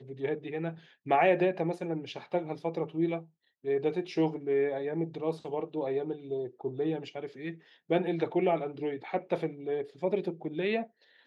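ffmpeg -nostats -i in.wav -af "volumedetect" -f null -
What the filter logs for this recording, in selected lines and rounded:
mean_volume: -31.8 dB
max_volume: -13.5 dB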